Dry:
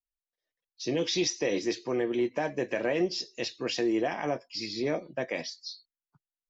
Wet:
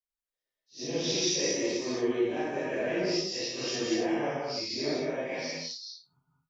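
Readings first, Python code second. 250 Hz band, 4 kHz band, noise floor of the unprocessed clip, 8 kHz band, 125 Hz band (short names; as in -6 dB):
-0.5 dB, +2.0 dB, under -85 dBFS, n/a, -0.5 dB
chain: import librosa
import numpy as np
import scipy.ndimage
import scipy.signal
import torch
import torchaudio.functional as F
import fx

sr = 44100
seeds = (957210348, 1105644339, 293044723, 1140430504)

y = fx.phase_scramble(x, sr, seeds[0], window_ms=200)
y = fx.dynamic_eq(y, sr, hz=5800.0, q=2.4, threshold_db=-50.0, ratio=4.0, max_db=6)
y = fx.rev_gated(y, sr, seeds[1], gate_ms=240, shape='rising', drr_db=0.0)
y = y * librosa.db_to_amplitude(-3.5)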